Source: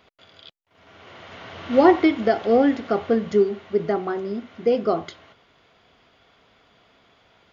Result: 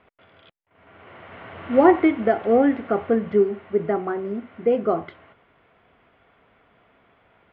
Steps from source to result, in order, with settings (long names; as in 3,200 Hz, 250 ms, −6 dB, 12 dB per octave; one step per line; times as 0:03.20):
low-pass filter 2,500 Hz 24 dB per octave